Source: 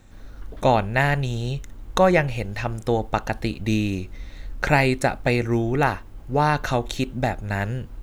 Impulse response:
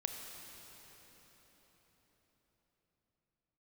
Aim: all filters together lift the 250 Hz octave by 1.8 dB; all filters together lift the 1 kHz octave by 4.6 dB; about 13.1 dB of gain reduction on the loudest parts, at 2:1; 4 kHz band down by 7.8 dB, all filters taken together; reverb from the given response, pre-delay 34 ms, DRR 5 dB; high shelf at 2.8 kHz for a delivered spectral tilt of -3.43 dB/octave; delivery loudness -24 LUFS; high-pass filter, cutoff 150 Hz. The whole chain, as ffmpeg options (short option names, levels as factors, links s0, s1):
-filter_complex "[0:a]highpass=150,equalizer=f=250:t=o:g=3,equalizer=f=1000:t=o:g=7,highshelf=f=2800:g=-8.5,equalizer=f=4000:t=o:g=-3.5,acompressor=threshold=0.0178:ratio=2,asplit=2[s0][s1];[1:a]atrim=start_sample=2205,adelay=34[s2];[s1][s2]afir=irnorm=-1:irlink=0,volume=0.531[s3];[s0][s3]amix=inputs=2:normalize=0,volume=2.37"